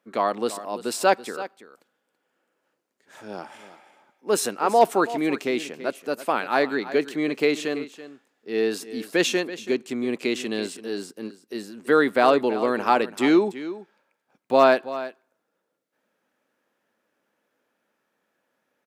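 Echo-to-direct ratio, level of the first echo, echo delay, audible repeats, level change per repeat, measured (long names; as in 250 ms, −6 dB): −14.5 dB, −14.5 dB, 331 ms, 1, repeats not evenly spaced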